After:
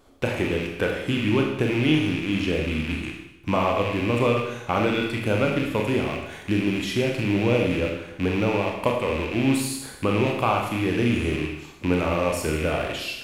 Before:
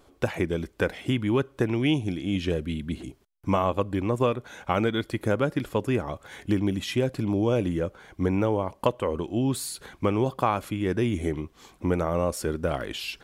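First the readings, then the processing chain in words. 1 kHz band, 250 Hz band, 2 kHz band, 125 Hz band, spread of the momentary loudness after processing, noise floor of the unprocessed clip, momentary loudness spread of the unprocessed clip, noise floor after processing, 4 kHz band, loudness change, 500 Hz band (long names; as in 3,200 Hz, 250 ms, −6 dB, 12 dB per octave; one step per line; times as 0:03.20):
+2.5 dB, +3.0 dB, +7.5 dB, +2.0 dB, 6 LU, −60 dBFS, 8 LU, −43 dBFS, +5.5 dB, +3.0 dB, +2.5 dB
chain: loose part that buzzes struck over −40 dBFS, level −22 dBFS
four-comb reverb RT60 0.89 s, combs from 26 ms, DRR 0.5 dB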